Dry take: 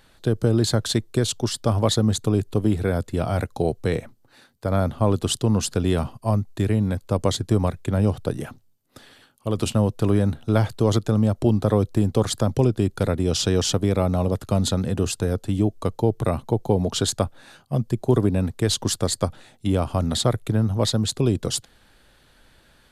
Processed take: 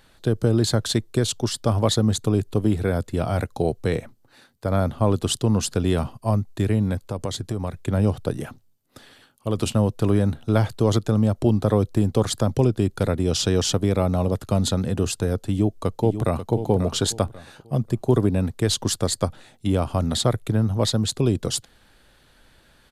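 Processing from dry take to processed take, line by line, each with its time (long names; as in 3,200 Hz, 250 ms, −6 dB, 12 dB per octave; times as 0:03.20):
0:07.09–0:07.73: downward compressor 2.5 to 1, threshold −25 dBFS
0:15.48–0:16.52: delay throw 540 ms, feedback 30%, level −10 dB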